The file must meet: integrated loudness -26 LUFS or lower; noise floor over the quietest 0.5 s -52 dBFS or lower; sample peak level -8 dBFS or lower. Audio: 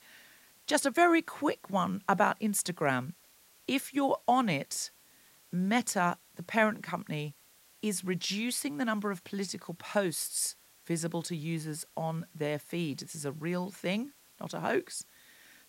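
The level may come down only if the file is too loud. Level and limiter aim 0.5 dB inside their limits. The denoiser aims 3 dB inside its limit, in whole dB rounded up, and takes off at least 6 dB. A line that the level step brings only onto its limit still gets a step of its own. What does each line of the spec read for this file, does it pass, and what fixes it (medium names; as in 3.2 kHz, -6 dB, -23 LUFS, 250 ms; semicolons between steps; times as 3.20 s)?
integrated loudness -32.0 LUFS: pass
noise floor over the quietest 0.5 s -62 dBFS: pass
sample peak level -12.5 dBFS: pass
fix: none needed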